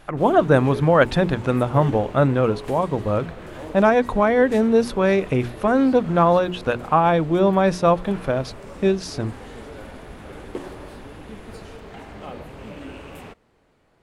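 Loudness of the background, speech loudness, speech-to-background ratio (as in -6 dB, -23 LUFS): -38.5 LUFS, -19.5 LUFS, 19.0 dB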